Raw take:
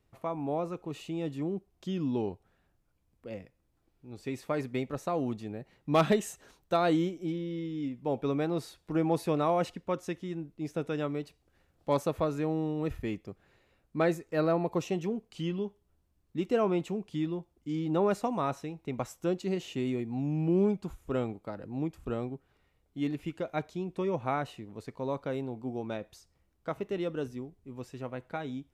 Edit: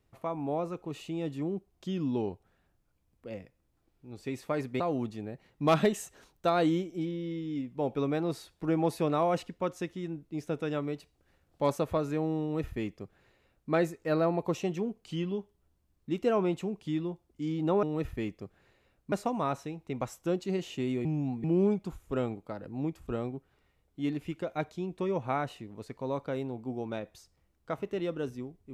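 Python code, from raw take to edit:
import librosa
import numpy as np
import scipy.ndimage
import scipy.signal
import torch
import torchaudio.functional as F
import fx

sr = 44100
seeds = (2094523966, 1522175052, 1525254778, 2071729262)

y = fx.edit(x, sr, fx.cut(start_s=4.8, length_s=0.27),
    fx.duplicate(start_s=12.69, length_s=1.29, to_s=18.1),
    fx.reverse_span(start_s=20.03, length_s=0.39), tone=tone)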